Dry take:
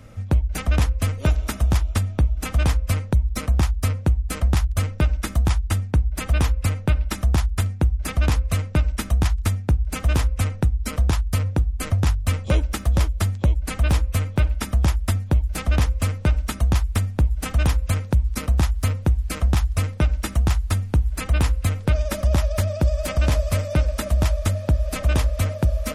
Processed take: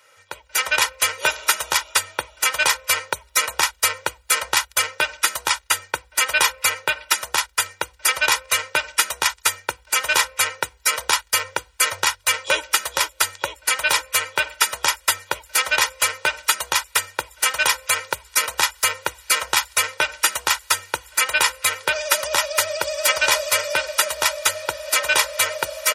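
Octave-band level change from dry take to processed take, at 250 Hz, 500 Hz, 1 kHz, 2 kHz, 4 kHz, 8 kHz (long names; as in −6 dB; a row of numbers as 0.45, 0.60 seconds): −16.5, +2.0, +10.0, +14.0, +14.0, +14.5 decibels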